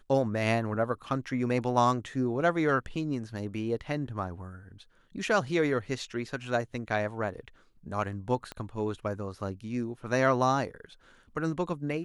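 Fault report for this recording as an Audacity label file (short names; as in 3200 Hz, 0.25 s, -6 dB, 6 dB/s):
8.520000	8.520000	pop -23 dBFS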